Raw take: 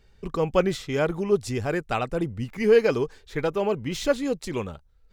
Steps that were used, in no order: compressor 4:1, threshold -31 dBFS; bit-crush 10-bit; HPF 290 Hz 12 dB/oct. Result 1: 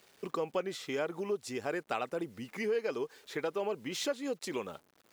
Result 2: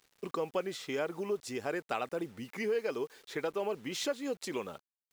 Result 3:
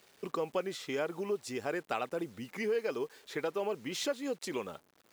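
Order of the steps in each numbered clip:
bit-crush > compressor > HPF; compressor > HPF > bit-crush; compressor > bit-crush > HPF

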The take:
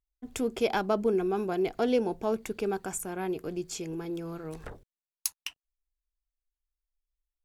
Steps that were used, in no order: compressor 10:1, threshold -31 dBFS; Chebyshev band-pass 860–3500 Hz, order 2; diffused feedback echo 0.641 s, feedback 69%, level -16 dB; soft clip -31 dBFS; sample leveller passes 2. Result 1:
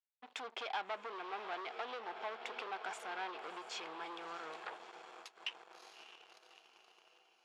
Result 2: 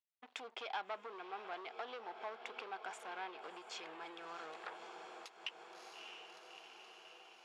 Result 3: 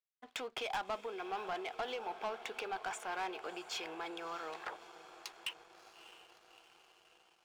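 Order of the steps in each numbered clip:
diffused feedback echo > compressor > sample leveller > soft clip > Chebyshev band-pass; sample leveller > diffused feedback echo > compressor > soft clip > Chebyshev band-pass; compressor > Chebyshev band-pass > soft clip > diffused feedback echo > sample leveller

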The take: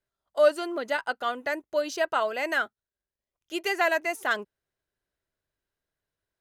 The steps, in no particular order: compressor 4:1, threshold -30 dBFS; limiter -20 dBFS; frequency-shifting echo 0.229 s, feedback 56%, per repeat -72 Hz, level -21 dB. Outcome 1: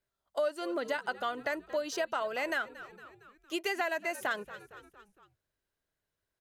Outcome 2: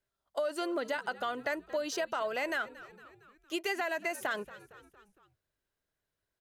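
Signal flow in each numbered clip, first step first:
frequency-shifting echo > compressor > limiter; limiter > frequency-shifting echo > compressor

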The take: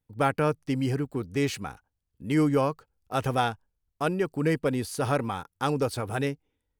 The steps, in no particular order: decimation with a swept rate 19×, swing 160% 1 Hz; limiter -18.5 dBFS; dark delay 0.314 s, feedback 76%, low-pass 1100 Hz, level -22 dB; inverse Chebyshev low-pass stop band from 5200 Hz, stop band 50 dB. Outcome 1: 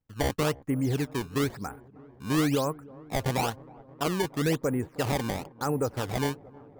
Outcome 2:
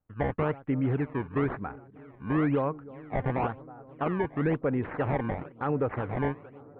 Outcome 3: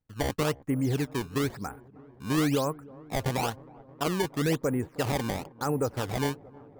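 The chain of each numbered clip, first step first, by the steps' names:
inverse Chebyshev low-pass > decimation with a swept rate > limiter > dark delay; dark delay > decimation with a swept rate > inverse Chebyshev low-pass > limiter; inverse Chebyshev low-pass > limiter > decimation with a swept rate > dark delay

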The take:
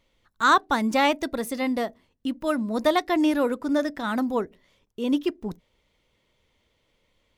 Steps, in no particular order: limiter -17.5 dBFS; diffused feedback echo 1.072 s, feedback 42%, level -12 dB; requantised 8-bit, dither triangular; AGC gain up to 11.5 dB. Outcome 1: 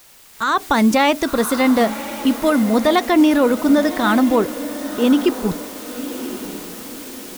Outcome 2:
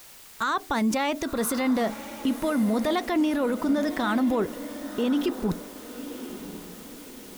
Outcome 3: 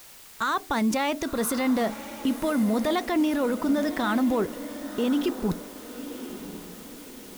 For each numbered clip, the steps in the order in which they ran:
requantised > limiter > diffused feedback echo > AGC; AGC > requantised > limiter > diffused feedback echo; AGC > limiter > requantised > diffused feedback echo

